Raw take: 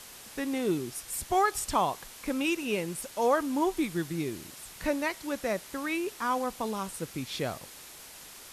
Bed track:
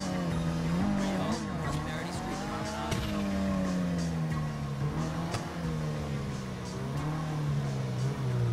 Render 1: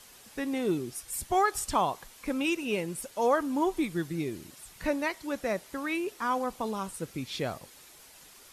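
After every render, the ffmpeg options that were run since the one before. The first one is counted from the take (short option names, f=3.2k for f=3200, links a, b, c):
-af "afftdn=nr=7:nf=-48"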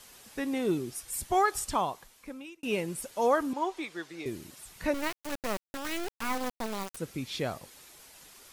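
-filter_complex "[0:a]asettb=1/sr,asplit=3[a][b][c];[a]atrim=end=3.534[d];[b]atrim=start=3.53:end=4.26,asetpts=PTS-STARTPTS,afade=t=in:d=0.004:c=qsin,afade=t=out:st=0.726:d=0.004:c=qsin,acrossover=split=400 7100:gain=0.0794 1 0.178[e][f][g];[e][f][g]amix=inputs=3:normalize=0[h];[c]atrim=start=4.256[i];[d][h]acrossfade=d=0.004:c1=hsin:c2=qsin[j];[j][i]acrossfade=d=0.004:c1=qsin:c2=hsin,asettb=1/sr,asplit=3[k][l][m];[k]atrim=end=4.944[n];[l]atrim=start=4.94:end=6.97,asetpts=PTS-STARTPTS,afade=t=in:d=0.004:c=qsin,afade=t=out:st=2.026:d=0.004:c=qsin,acrusher=bits=3:dc=4:mix=0:aa=0.000001[o];[m]atrim=start=6.966[p];[n][o]acrossfade=d=0.004:c1=hsin:c2=qsin[q];[q][p]acrossfade=d=0.004:c1=qsin:c2=hsin,asplit=2[r][s];[r]atrim=end=2.63,asetpts=PTS-STARTPTS,afade=t=out:st=1.53:d=1.1[t];[s]atrim=start=2.63,asetpts=PTS-STARTPTS,afade=t=in:d=0.004:c=hsin[u];[t][u]concat=n=2:v=0:a=1"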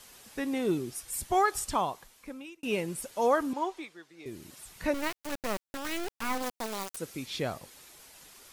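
-filter_complex "[0:a]asettb=1/sr,asplit=3[a][b][c];[a]atrim=end=6.424[d];[b]atrim=start=6.42:end=7.26,asetpts=PTS-STARTPTS,afade=t=in:d=0.004:c=qsin,afade=t=out:st=0.836:d=0.004:c=qsin,bass=f=250:g=-6,treble=f=4k:g=4[e];[c]atrim=start=7.256[f];[d][e]acrossfade=d=0.004:c1=hsin:c2=qsin[g];[g][f]acrossfade=d=0.004:c1=qsin:c2=hsin,asplit=3[h][i][j];[h]atrim=end=3.98,asetpts=PTS-STARTPTS,afade=t=out:st=3.59:d=0.39:silence=0.281838[k];[i]atrim=start=3.98:end=4.16,asetpts=PTS-STARTPTS,volume=-11dB[l];[j]atrim=start=4.16,asetpts=PTS-STARTPTS,afade=t=in:d=0.39:silence=0.281838[m];[k][l][m]concat=n=3:v=0:a=1"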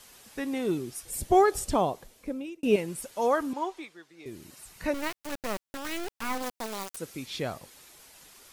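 -filter_complex "[0:a]asettb=1/sr,asplit=3[a][b][c];[a]atrim=end=1.054[d];[b]atrim=start=1.05:end=2.76,asetpts=PTS-STARTPTS,afade=t=in:d=0.004:c=qsin,afade=t=out:st=1.706:d=0.004:c=qsin,lowshelf=f=750:t=q:w=1.5:g=7.5[e];[c]atrim=start=2.756[f];[d][e]acrossfade=d=0.004:c1=hsin:c2=qsin[g];[g][f]acrossfade=d=0.004:c1=qsin:c2=hsin,asettb=1/sr,asplit=3[h][i][j];[h]atrim=end=4.454[k];[i]atrim=start=4.45:end=4.91,asetpts=PTS-STARTPTS,afade=t=in:d=0.004:c=qsin,afade=t=out:st=0.456:d=0.004:c=qsin,bandreject=f=3.4k:w=12[l];[j]atrim=start=4.906[m];[k][l]acrossfade=d=0.004:c1=hsin:c2=qsin[n];[n][m]acrossfade=d=0.004:c1=qsin:c2=hsin"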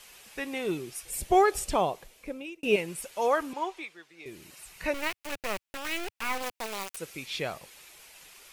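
-af "equalizer=f=100:t=o:w=0.67:g=-8,equalizer=f=250:t=o:w=0.67:g=-7,equalizer=f=2.5k:t=o:w=0.67:g=7"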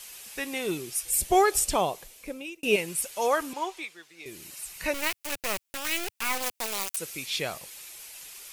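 -af "highshelf=f=4.1k:g=11.5"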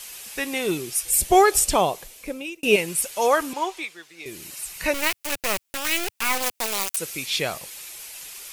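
-af "volume=5.5dB"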